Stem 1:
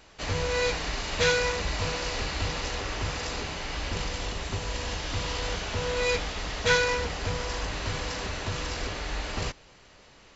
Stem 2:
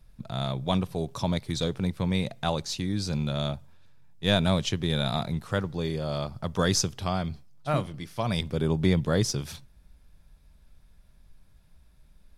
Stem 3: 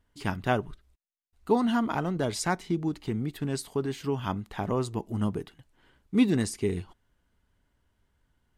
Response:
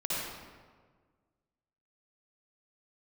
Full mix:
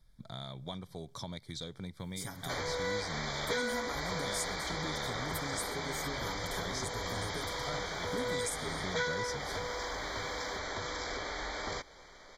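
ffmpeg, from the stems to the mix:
-filter_complex "[0:a]bass=frequency=250:gain=-12,treble=frequency=4000:gain=-4,acompressor=threshold=-38dB:ratio=2.5,adelay=2300,volume=2dB[link_01];[1:a]volume=-9.5dB[link_02];[2:a]aecho=1:1:7.2:0.92,acompressor=threshold=-32dB:ratio=3,aexciter=amount=8.4:drive=2.9:freq=5900,adelay=2000,volume=-1.5dB[link_03];[link_02][link_03]amix=inputs=2:normalize=0,equalizer=frequency=3800:width=0.44:gain=6.5,acompressor=threshold=-39dB:ratio=4,volume=0dB[link_04];[link_01][link_04]amix=inputs=2:normalize=0,asuperstop=centerf=2700:order=20:qfactor=3.8"

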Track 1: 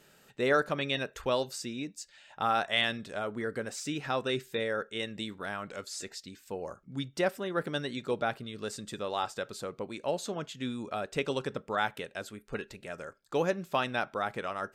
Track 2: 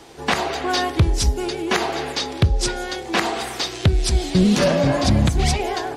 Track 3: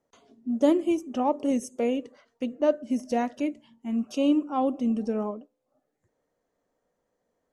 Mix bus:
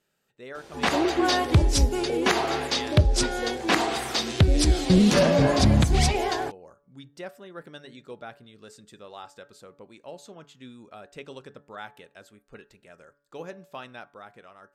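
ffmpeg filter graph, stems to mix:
ffmpeg -i stem1.wav -i stem2.wav -i stem3.wav -filter_complex "[0:a]bandreject=frequency=143.4:width_type=h:width=4,bandreject=frequency=286.8:width_type=h:width=4,bandreject=frequency=430.2:width_type=h:width=4,bandreject=frequency=573.6:width_type=h:width=4,bandreject=frequency=717:width_type=h:width=4,bandreject=frequency=860.4:width_type=h:width=4,bandreject=frequency=1003.8:width_type=h:width=4,bandreject=frequency=1147.2:width_type=h:width=4,bandreject=frequency=1290.6:width_type=h:width=4,bandreject=frequency=1434:width_type=h:width=4,bandreject=frequency=1577.4:width_type=h:width=4,bandreject=frequency=1720.8:width_type=h:width=4,bandreject=frequency=1864.2:width_type=h:width=4,volume=-14.5dB[link_01];[1:a]adelay=550,volume=-7dB[link_02];[2:a]bandpass=frequency=390:width_type=q:width=4.2:csg=0,adelay=300,volume=-2dB[link_03];[link_01][link_02][link_03]amix=inputs=3:normalize=0,dynaudnorm=framelen=190:gausssize=9:maxgain=5dB" out.wav

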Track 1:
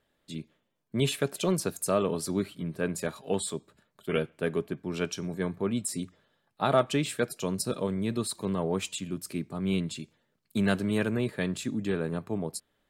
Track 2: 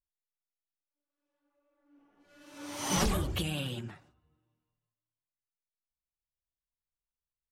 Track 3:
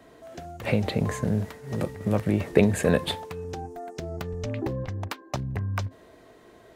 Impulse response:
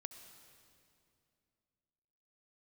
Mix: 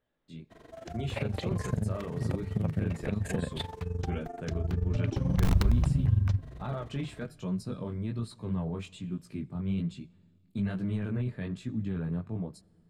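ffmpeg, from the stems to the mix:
-filter_complex "[0:a]aemphasis=mode=reproduction:type=75fm,flanger=delay=16:depth=7.7:speed=1.2,alimiter=level_in=0.5dB:limit=-24dB:level=0:latency=1:release=14,volume=-0.5dB,volume=-5dB,asplit=2[link_01][link_02];[link_02]volume=-12.5dB[link_03];[1:a]aemphasis=mode=reproduction:type=riaa,acrossover=split=83|1000[link_04][link_05][link_06];[link_04]acompressor=threshold=-20dB:ratio=4[link_07];[link_05]acompressor=threshold=-25dB:ratio=4[link_08];[link_06]acompressor=threshold=-51dB:ratio=4[link_09];[link_07][link_08][link_09]amix=inputs=3:normalize=0,aeval=exprs='(mod(5.62*val(0)+1,2)-1)/5.62':channel_layout=same,adelay=2400,volume=-7dB,asplit=2[link_10][link_11];[link_11]volume=-9.5dB[link_12];[2:a]highshelf=frequency=9400:gain=-9,acompressor=threshold=-24dB:ratio=6,adelay=500,volume=2.5dB[link_13];[link_10][link_13]amix=inputs=2:normalize=0,tremolo=f=23:d=0.824,acompressor=threshold=-39dB:ratio=1.5,volume=0dB[link_14];[3:a]atrim=start_sample=2205[link_15];[link_03][link_12]amix=inputs=2:normalize=0[link_16];[link_16][link_15]afir=irnorm=-1:irlink=0[link_17];[link_01][link_14][link_17]amix=inputs=3:normalize=0,asubboost=boost=4:cutoff=180"

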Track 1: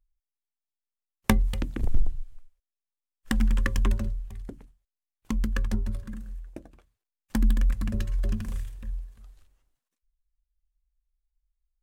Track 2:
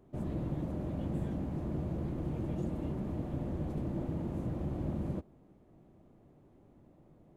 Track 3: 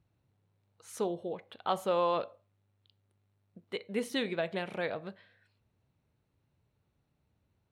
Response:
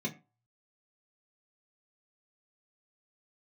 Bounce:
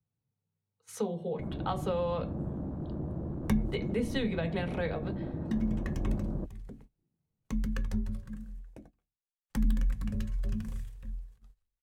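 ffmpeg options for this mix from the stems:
-filter_complex "[0:a]adelay=2200,volume=-6.5dB,asplit=2[link_01][link_02];[link_02]volume=-10.5dB[link_03];[1:a]afwtdn=0.00501,adelay=1250,volume=-0.5dB[link_04];[2:a]volume=2.5dB,asplit=3[link_05][link_06][link_07];[link_06]volume=-7dB[link_08];[link_07]apad=whole_len=618453[link_09];[link_01][link_09]sidechaincompress=threshold=-51dB:ratio=8:attack=49:release=952[link_10];[3:a]atrim=start_sample=2205[link_11];[link_03][link_08]amix=inputs=2:normalize=0[link_12];[link_12][link_11]afir=irnorm=-1:irlink=0[link_13];[link_10][link_04][link_05][link_13]amix=inputs=4:normalize=0,agate=range=-18dB:threshold=-52dB:ratio=16:detection=peak,acrossover=split=190[link_14][link_15];[link_15]acompressor=threshold=-30dB:ratio=5[link_16];[link_14][link_16]amix=inputs=2:normalize=0"

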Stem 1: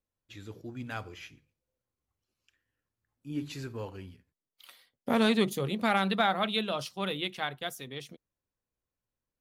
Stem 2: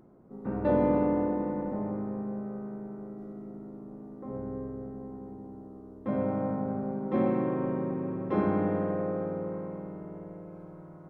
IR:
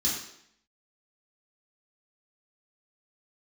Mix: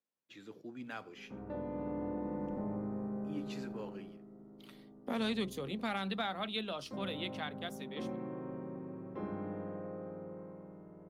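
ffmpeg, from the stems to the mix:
-filter_complex "[0:a]highpass=frequency=170:width=0.5412,highpass=frequency=170:width=1.3066,highshelf=frequency=6400:gain=-10,volume=-4dB[link_01];[1:a]adelay=850,volume=-3dB,afade=type=in:start_time=1.71:duration=0.71:silence=0.281838,afade=type=out:start_time=3.8:duration=0.39:silence=0.354813[link_02];[link_01][link_02]amix=inputs=2:normalize=0,acrossover=split=170|3000[link_03][link_04][link_05];[link_04]acompressor=threshold=-40dB:ratio=2[link_06];[link_03][link_06][link_05]amix=inputs=3:normalize=0"

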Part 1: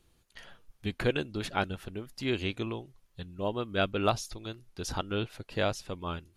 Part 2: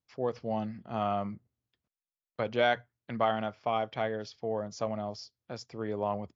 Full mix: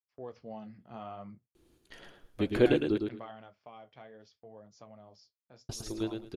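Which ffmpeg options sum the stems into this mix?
ffmpeg -i stem1.wav -i stem2.wav -filter_complex "[0:a]equalizer=frequency=340:width=1.4:gain=13,adelay=1550,volume=-3dB,asplit=3[link_01][link_02][link_03];[link_01]atrim=end=2.98,asetpts=PTS-STARTPTS,afade=type=out:start_time=2.976:duration=0.004:curve=hsin[link_04];[link_02]atrim=start=2.98:end=5.69,asetpts=PTS-STARTPTS,volume=0[link_05];[link_03]atrim=start=5.69,asetpts=PTS-STARTPTS,afade=type=in:duration=0.004:curve=hsin[link_06];[link_04][link_05][link_06]concat=n=3:v=0:a=1,asplit=2[link_07][link_08];[link_08]volume=-5dB[link_09];[1:a]agate=range=-19dB:threshold=-51dB:ratio=16:detection=peak,acompressor=threshold=-32dB:ratio=2,flanger=delay=8.5:depth=7:regen=-51:speed=0.64:shape=triangular,volume=-5dB,afade=type=out:start_time=2.94:duration=0.65:silence=0.446684[link_10];[link_09]aecho=0:1:109|218|327:1|0.21|0.0441[link_11];[link_07][link_10][link_11]amix=inputs=3:normalize=0" out.wav

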